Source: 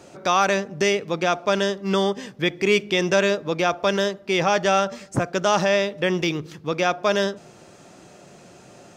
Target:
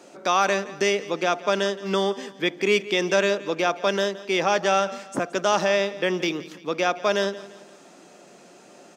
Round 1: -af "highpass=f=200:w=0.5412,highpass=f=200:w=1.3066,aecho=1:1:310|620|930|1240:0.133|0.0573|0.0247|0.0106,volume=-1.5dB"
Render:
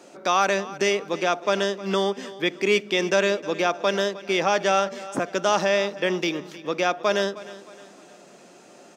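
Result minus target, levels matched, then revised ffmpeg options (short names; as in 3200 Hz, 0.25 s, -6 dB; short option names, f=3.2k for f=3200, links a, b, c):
echo 0.139 s late
-af "highpass=f=200:w=0.5412,highpass=f=200:w=1.3066,aecho=1:1:171|342|513|684:0.133|0.0573|0.0247|0.0106,volume=-1.5dB"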